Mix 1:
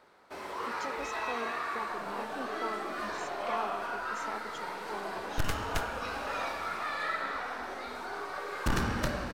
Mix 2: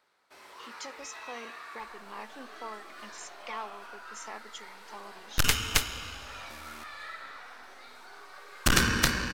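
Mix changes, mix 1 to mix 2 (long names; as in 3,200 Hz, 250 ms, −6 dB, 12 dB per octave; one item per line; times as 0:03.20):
first sound −10.0 dB
second sound +9.5 dB
master: add tilt shelving filter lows −6.5 dB, about 1,300 Hz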